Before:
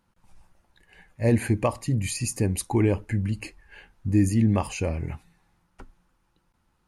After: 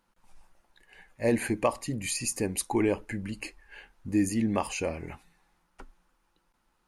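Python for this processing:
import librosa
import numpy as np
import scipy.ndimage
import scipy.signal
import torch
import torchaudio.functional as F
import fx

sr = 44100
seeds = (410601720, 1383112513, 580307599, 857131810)

y = fx.peak_eq(x, sr, hz=98.0, db=-14.5, octaves=1.7)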